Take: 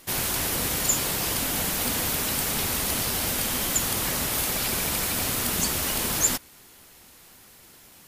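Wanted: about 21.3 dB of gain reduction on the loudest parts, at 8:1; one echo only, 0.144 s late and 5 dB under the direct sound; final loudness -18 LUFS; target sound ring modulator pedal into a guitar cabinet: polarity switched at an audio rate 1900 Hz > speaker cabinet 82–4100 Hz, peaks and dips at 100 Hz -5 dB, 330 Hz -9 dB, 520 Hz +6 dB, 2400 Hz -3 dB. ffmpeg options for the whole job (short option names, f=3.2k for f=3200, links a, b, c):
-af "acompressor=threshold=-41dB:ratio=8,aecho=1:1:144:0.562,aeval=exprs='val(0)*sgn(sin(2*PI*1900*n/s))':c=same,highpass=82,equalizer=f=100:t=q:w=4:g=-5,equalizer=f=330:t=q:w=4:g=-9,equalizer=f=520:t=q:w=4:g=6,equalizer=f=2.4k:t=q:w=4:g=-3,lowpass=f=4.1k:w=0.5412,lowpass=f=4.1k:w=1.3066,volume=28dB"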